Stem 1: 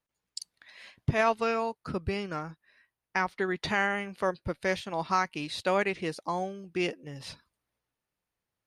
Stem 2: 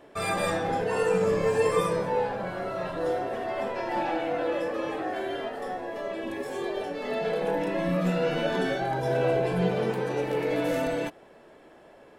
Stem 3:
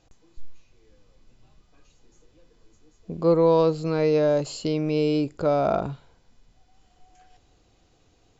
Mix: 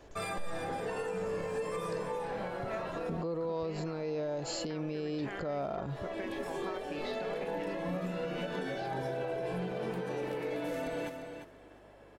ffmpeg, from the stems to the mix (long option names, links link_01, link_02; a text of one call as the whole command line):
ffmpeg -i stem1.wav -i stem2.wav -i stem3.wav -filter_complex "[0:a]acompressor=threshold=-35dB:ratio=6,lowpass=3900,adelay=1550,volume=-4dB[link_01];[1:a]aeval=exprs='val(0)+0.00126*(sin(2*PI*50*n/s)+sin(2*PI*2*50*n/s)/2+sin(2*PI*3*50*n/s)/3+sin(2*PI*4*50*n/s)/4+sin(2*PI*5*50*n/s)/5)':channel_layout=same,volume=-4.5dB,asplit=2[link_02][link_03];[link_03]volume=-11.5dB[link_04];[2:a]acompressor=threshold=-27dB:ratio=2.5,volume=0.5dB,asplit=2[link_05][link_06];[link_06]apad=whole_len=537276[link_07];[link_02][link_07]sidechaincompress=threshold=-35dB:ratio=8:attack=6:release=375[link_08];[link_01][link_08]amix=inputs=2:normalize=0,alimiter=level_in=0.5dB:limit=-24dB:level=0:latency=1:release=302,volume=-0.5dB,volume=0dB[link_09];[link_04]aecho=0:1:349|698|1047:1|0.15|0.0225[link_10];[link_05][link_09][link_10]amix=inputs=3:normalize=0,alimiter=level_in=3.5dB:limit=-24dB:level=0:latency=1:release=112,volume=-3.5dB" out.wav